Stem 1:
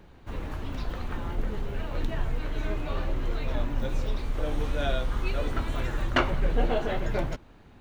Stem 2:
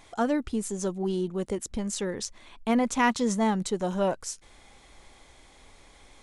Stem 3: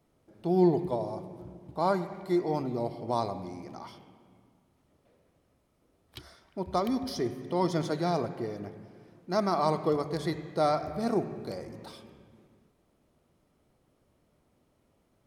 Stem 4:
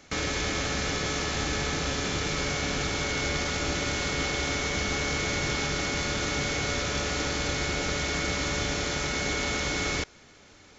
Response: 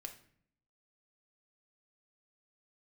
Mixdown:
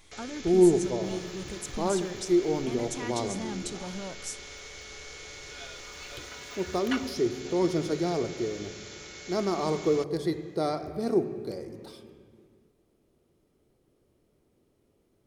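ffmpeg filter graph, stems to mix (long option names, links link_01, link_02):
-filter_complex "[0:a]highpass=570,aecho=1:1:4.1:0.86,adelay=750,volume=5.5dB,afade=type=out:start_time=2.27:duration=0.78:silence=0.281838,afade=type=in:start_time=5.37:duration=0.66:silence=0.281838,afade=type=out:start_time=7.02:duration=0.23:silence=0.266073[link_01];[1:a]alimiter=limit=-22dB:level=0:latency=1,volume=-3.5dB,asplit=2[link_02][link_03];[link_03]volume=-4dB[link_04];[2:a]equalizer=frequency=400:width=1.1:gain=13.5,volume=-2dB,asplit=2[link_05][link_06];[link_06]volume=-5dB[link_07];[3:a]lowshelf=frequency=320:width_type=q:width=3:gain=-8,volume=-11.5dB[link_08];[4:a]atrim=start_sample=2205[link_09];[link_04][link_07]amix=inputs=2:normalize=0[link_10];[link_10][link_09]afir=irnorm=-1:irlink=0[link_11];[link_01][link_02][link_05][link_08][link_11]amix=inputs=5:normalize=0,equalizer=frequency=610:width=0.4:gain=-10"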